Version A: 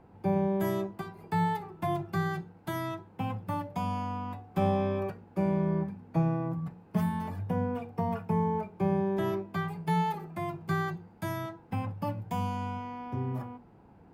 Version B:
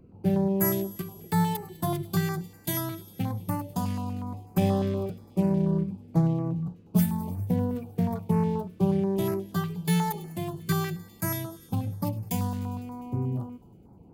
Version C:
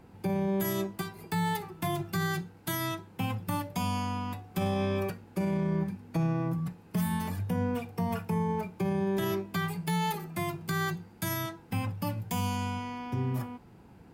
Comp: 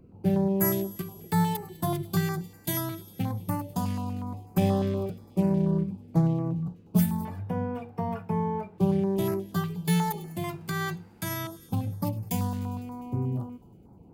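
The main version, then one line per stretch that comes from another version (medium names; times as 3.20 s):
B
7.25–8.78 s: from A
10.44–11.47 s: from C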